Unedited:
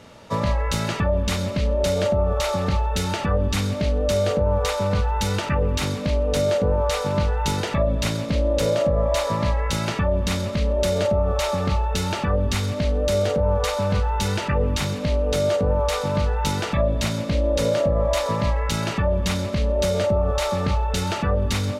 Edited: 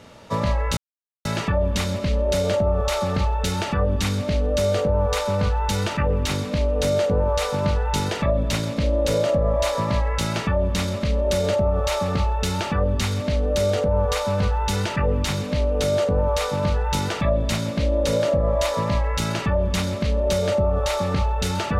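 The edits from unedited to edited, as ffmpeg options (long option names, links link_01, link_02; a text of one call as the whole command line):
ffmpeg -i in.wav -filter_complex "[0:a]asplit=2[link_01][link_02];[link_01]atrim=end=0.77,asetpts=PTS-STARTPTS,afade=type=out:start_time=0.766:duration=0.004:curve=hsin,apad=pad_dur=0.48[link_03];[link_02]atrim=start=0.77,asetpts=PTS-STARTPTS,afade=type=in:duration=0.004:curve=hsin[link_04];[link_03][link_04]concat=n=2:v=0:a=1" out.wav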